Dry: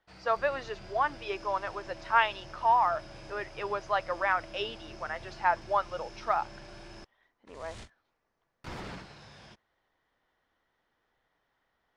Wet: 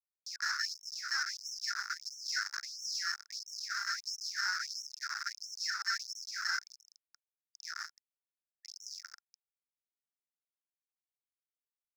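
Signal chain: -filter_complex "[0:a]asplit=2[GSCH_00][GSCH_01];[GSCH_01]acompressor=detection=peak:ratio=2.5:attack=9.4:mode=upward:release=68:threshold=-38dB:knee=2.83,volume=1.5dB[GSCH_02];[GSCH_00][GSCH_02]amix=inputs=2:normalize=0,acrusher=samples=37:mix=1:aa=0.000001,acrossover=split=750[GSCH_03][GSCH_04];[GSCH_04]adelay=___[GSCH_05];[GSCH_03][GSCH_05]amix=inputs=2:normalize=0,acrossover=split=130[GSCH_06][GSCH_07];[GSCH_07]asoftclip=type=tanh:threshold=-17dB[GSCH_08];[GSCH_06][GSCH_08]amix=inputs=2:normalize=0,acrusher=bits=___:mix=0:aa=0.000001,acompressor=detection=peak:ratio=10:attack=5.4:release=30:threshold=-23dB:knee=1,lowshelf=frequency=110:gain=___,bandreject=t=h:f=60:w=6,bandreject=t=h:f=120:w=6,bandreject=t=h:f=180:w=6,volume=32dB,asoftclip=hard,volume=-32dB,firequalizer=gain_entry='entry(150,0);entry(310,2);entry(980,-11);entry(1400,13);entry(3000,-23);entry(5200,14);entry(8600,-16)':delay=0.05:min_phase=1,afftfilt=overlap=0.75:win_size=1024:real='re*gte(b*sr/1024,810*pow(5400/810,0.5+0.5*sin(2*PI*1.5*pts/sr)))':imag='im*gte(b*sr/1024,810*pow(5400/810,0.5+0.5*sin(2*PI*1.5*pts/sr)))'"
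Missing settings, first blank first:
160, 4, -12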